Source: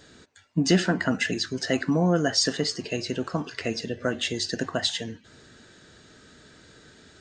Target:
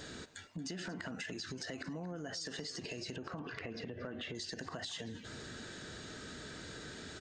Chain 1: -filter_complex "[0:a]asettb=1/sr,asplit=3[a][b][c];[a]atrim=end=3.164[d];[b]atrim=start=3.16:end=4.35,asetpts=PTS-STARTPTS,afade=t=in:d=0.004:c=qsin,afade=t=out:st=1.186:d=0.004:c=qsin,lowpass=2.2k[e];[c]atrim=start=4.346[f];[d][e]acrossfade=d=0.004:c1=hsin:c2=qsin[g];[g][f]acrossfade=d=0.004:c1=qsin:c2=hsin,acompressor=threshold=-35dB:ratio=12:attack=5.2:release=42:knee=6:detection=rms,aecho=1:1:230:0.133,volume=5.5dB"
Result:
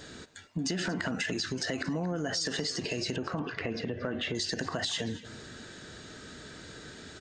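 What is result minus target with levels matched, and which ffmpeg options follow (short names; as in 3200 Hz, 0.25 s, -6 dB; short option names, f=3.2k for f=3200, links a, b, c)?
compressor: peak gain reduction -10.5 dB
-filter_complex "[0:a]asettb=1/sr,asplit=3[a][b][c];[a]atrim=end=3.164[d];[b]atrim=start=3.16:end=4.35,asetpts=PTS-STARTPTS,afade=t=in:d=0.004:c=qsin,afade=t=out:st=1.186:d=0.004:c=qsin,lowpass=2.2k[e];[c]atrim=start=4.346[f];[d][e]acrossfade=d=0.004:c1=hsin:c2=qsin[g];[g][f]acrossfade=d=0.004:c1=qsin:c2=hsin,acompressor=threshold=-46.5dB:ratio=12:attack=5.2:release=42:knee=6:detection=rms,aecho=1:1:230:0.133,volume=5.5dB"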